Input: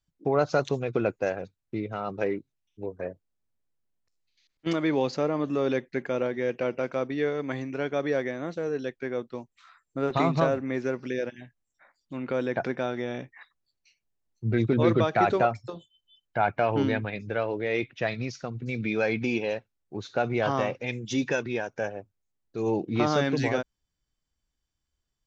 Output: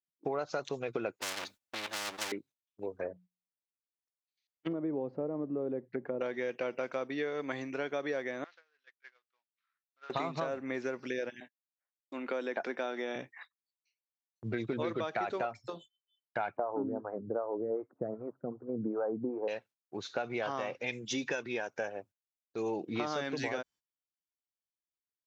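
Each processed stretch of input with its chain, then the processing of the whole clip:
1.21–2.32 s: comb filter that takes the minimum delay 3.4 ms + spectrum-flattening compressor 4:1
2.89–6.21 s: low-pass that closes with the level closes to 500 Hz, closed at -26 dBFS + bass shelf 88 Hz +9 dB + de-hum 60.06 Hz, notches 3
8.44–10.10 s: CVSD coder 32 kbps + ladder band-pass 2.1 kHz, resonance 20%
11.40–13.16 s: high-pass 210 Hz 24 dB/octave + gate -54 dBFS, range -20 dB
16.57–19.48 s: steep low-pass 1.3 kHz 48 dB/octave + peaking EQ 330 Hz +7 dB 2.8 oct + lamp-driven phase shifter 2.6 Hz
whole clip: gate -50 dBFS, range -19 dB; high-pass 440 Hz 6 dB/octave; compression, threshold -31 dBFS

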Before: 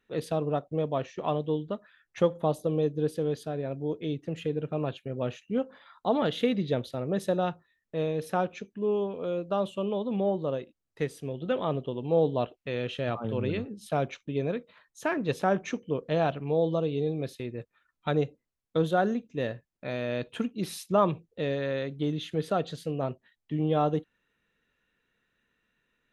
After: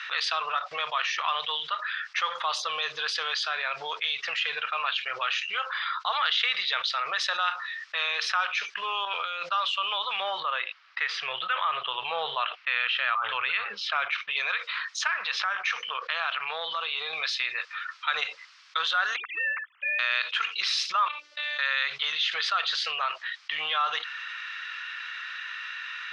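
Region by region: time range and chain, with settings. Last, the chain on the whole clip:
9.05–9.49 s: band-stop 1.1 kHz, Q 5.9 + compressor with a negative ratio -36 dBFS, ratio -0.5
10.40–14.31 s: low-pass 2.7 kHz + bass shelf 150 Hz +9.5 dB
15.07–17.13 s: compression 3:1, threshold -34 dBFS + distance through air 100 m
19.16–19.99 s: formants replaced by sine waves + compression 3:1, threshold -32 dBFS
21.08–21.59 s: de-hum 47.23 Hz, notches 9 + compression 3:1, threshold -47 dBFS + robot voice 295 Hz
whole clip: elliptic band-pass 1.2–5.2 kHz, stop band 60 dB; level flattener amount 70%; trim +4.5 dB

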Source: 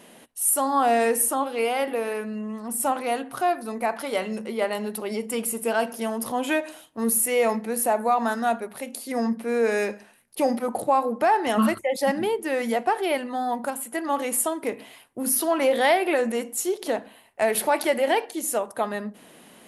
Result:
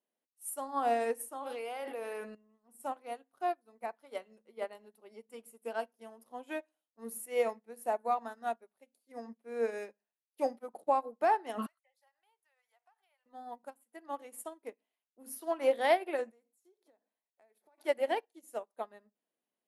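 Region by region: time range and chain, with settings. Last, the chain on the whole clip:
1.35–2.35 s: bass shelf 250 Hz -10.5 dB + level flattener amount 100%
11.66–13.26 s: high-pass 830 Hz 24 dB/octave + compression 8:1, threshold -32 dBFS
16.30–17.78 s: band-stop 2.9 kHz, Q 6.3 + compression 16:1, threshold -31 dBFS
whole clip: high-pass 210 Hz; peaking EQ 530 Hz +4 dB 2.2 oct; upward expansion 2.5:1, over -37 dBFS; trim -8 dB

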